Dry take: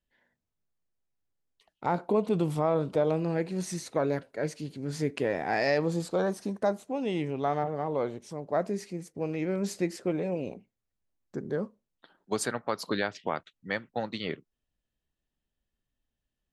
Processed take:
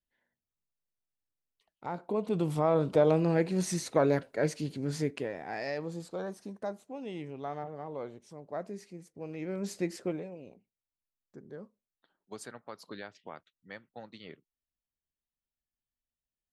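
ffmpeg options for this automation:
-af "volume=10dB,afade=t=in:st=1.99:d=1.06:silence=0.266073,afade=t=out:st=4.75:d=0.57:silence=0.251189,afade=t=in:st=9.23:d=0.78:silence=0.421697,afade=t=out:st=10.01:d=0.29:silence=0.251189"

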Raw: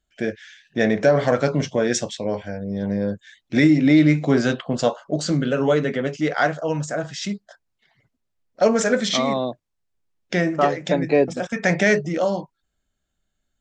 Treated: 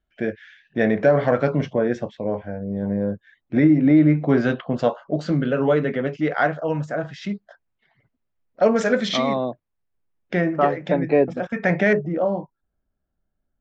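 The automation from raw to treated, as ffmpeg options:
-af "asetnsamples=n=441:p=0,asendcmd='1.73 lowpass f 1400;4.29 lowpass f 2500;8.76 lowpass f 4000;9.35 lowpass f 2200;11.93 lowpass f 1100',lowpass=2.4k"

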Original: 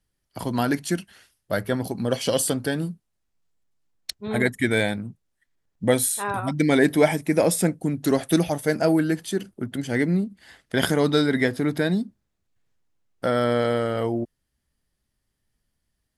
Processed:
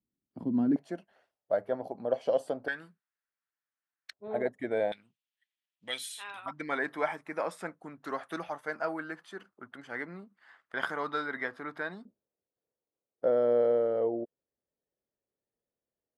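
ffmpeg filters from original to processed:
-af "asetnsamples=n=441:p=0,asendcmd='0.76 bandpass f 640;2.68 bandpass f 1600;4.13 bandpass f 610;4.92 bandpass f 3000;6.46 bandpass f 1200;12.05 bandpass f 500',bandpass=f=250:t=q:w=2.8:csg=0"

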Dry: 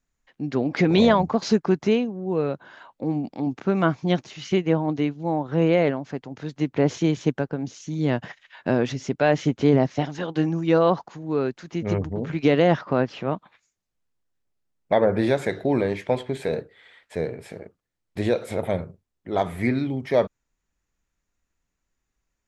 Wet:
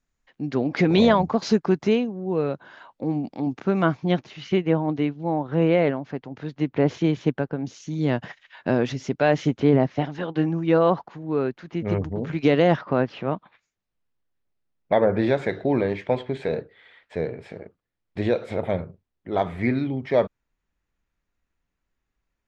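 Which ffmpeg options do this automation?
-af "asetnsamples=n=441:p=0,asendcmd='3.97 lowpass f 3800;7.66 lowpass f 6500;9.6 lowpass f 3300;11.93 lowpass f 6900;12.76 lowpass f 4000',lowpass=7k"

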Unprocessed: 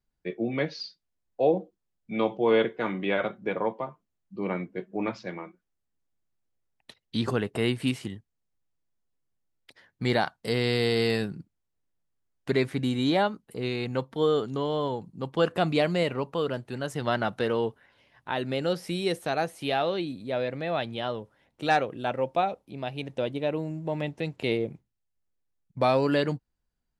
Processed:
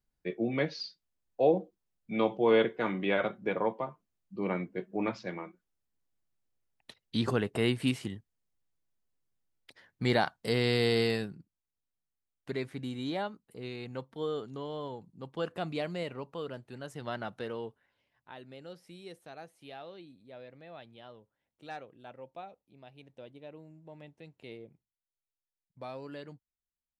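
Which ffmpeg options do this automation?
-af "volume=-2dB,afade=t=out:st=10.96:d=0.43:silence=0.375837,afade=t=out:st=17.33:d=1.14:silence=0.354813"

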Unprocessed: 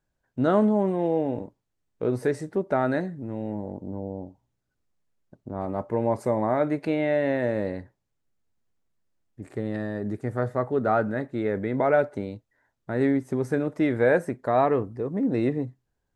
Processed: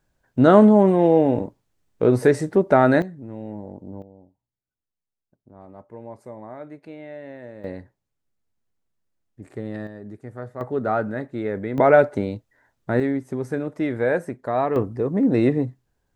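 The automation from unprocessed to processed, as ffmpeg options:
-af "asetnsamples=n=441:p=0,asendcmd='3.02 volume volume -2.5dB;4.02 volume volume -14dB;7.64 volume volume -1.5dB;9.87 volume volume -8dB;10.61 volume volume 0dB;11.78 volume volume 7dB;13 volume volume -1dB;14.76 volume volume 6dB',volume=8.5dB"

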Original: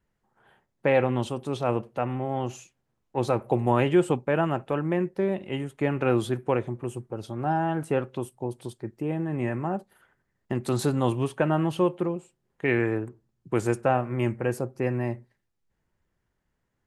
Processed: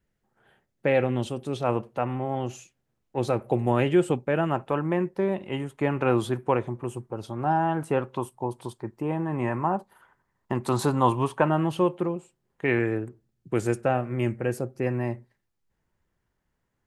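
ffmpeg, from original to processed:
-af "asetnsamples=n=441:p=0,asendcmd='1.64 equalizer g 2.5;2.35 equalizer g -4;4.5 equalizer g 5.5;8.1 equalizer g 12;11.49 equalizer g 2;12.79 equalizer g -5.5;14.86 equalizer g 1.5',equalizer=f=990:t=o:w=0.62:g=-7"

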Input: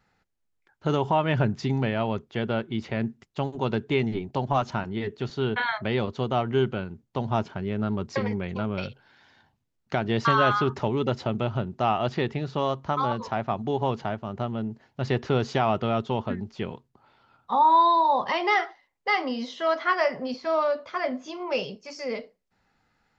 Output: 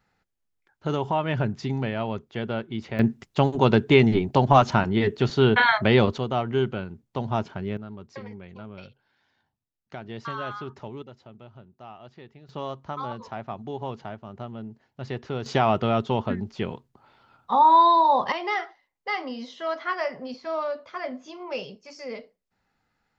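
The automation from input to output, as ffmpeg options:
-af "asetnsamples=n=441:p=0,asendcmd='2.99 volume volume 8dB;6.18 volume volume -0.5dB;7.77 volume volume -12dB;11.02 volume volume -20dB;12.49 volume volume -7dB;15.46 volume volume 2.5dB;18.32 volume volume -4.5dB',volume=-2dB"

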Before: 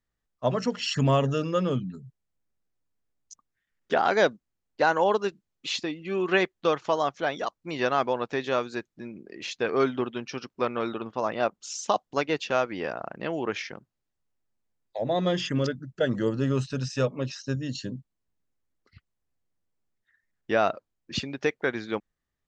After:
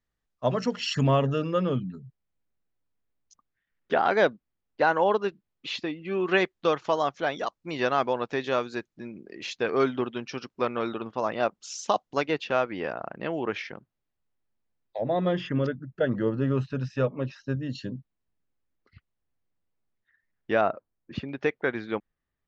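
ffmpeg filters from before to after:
-af "asetnsamples=n=441:p=0,asendcmd='1.07 lowpass f 3500;6.27 lowpass f 6800;12.31 lowpass f 3800;15.01 lowpass f 2300;17.7 lowpass f 3600;20.61 lowpass f 1700;21.29 lowpass f 3200',lowpass=6.6k"

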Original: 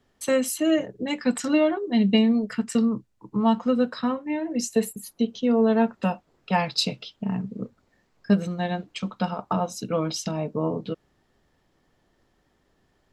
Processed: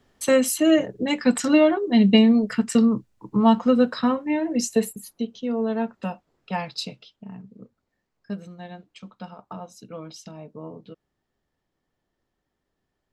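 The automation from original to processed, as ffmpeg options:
-af "volume=4dB,afade=t=out:st=4.44:d=0.85:silence=0.354813,afade=t=out:st=6.55:d=0.72:silence=0.446684"

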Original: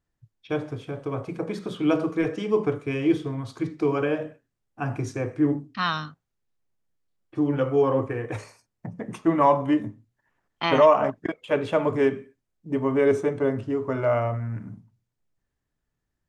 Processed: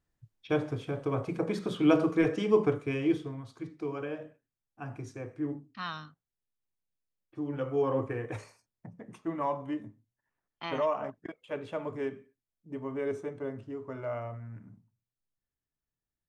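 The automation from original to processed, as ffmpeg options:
-af "volume=6dB,afade=t=out:st=2.51:d=0.98:silence=0.281838,afade=t=in:st=7.43:d=0.72:silence=0.446684,afade=t=out:st=8.15:d=0.86:silence=0.398107"

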